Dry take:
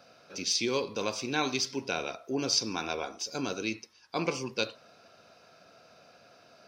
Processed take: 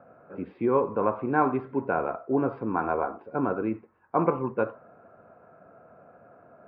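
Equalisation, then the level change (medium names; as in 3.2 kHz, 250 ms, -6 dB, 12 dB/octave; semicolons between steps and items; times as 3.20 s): low-pass 1.5 kHz 24 dB/octave; dynamic bell 1.1 kHz, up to +6 dB, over -47 dBFS, Q 1; distance through air 440 m; +7.0 dB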